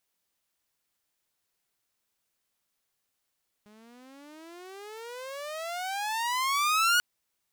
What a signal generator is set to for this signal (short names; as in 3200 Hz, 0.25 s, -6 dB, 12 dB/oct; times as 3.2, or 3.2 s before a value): gliding synth tone saw, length 3.34 s, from 206 Hz, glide +34 st, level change +33 dB, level -17.5 dB